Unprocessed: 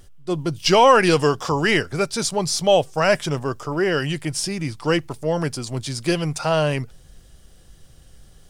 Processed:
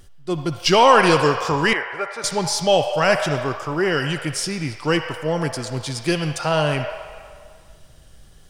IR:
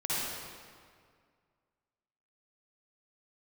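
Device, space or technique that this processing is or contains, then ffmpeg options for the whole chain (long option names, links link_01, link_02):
filtered reverb send: -filter_complex "[0:a]asplit=2[link_01][link_02];[link_02]highpass=frequency=580:width=0.5412,highpass=frequency=580:width=1.3066,lowpass=4300[link_03];[1:a]atrim=start_sample=2205[link_04];[link_03][link_04]afir=irnorm=-1:irlink=0,volume=-11.5dB[link_05];[link_01][link_05]amix=inputs=2:normalize=0,asettb=1/sr,asplit=3[link_06][link_07][link_08];[link_06]atrim=end=1.734[link_09];[link_07]atrim=start=1.73:end=2.24,asetpts=PTS-STARTPTS,afade=type=in:duration=0.004:curve=qsin,afade=type=out:start_time=0.506:duration=0.004:curve=qsin,acrossover=split=460 2100:gain=0.0794 1 0.126[link_10][link_11][link_12];[link_10][link_11][link_12]amix=inputs=3:normalize=0[link_13];[link_08]atrim=start=2.236[link_14];[link_09][link_13]acrossfade=duration=0.004:curve1=hsin:curve2=qsin[link_15];[link_15][link_14]acrossfade=duration=0.004:curve1=qsin:curve2=hsin"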